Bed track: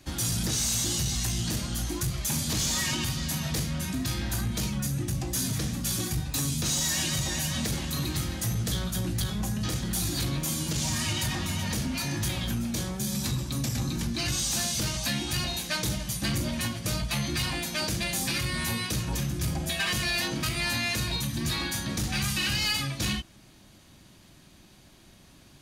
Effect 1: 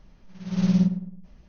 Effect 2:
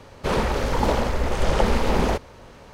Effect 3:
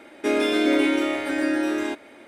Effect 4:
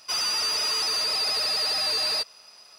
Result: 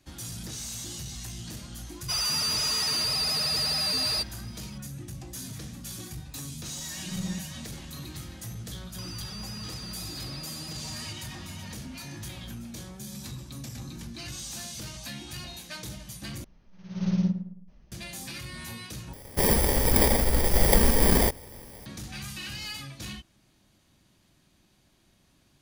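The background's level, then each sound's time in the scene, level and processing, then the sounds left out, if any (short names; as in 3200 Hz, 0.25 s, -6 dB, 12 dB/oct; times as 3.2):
bed track -10 dB
2 add 4 -4 dB + high shelf 8100 Hz +9 dB
6.55 add 1 -11.5 dB + beating tremolo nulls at 1.6 Hz
8.9 add 4 -6 dB + compressor 4:1, threshold -36 dBFS
16.44 replace with 1 -5 dB
19.13 replace with 2 + FFT order left unsorted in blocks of 32 samples
not used: 3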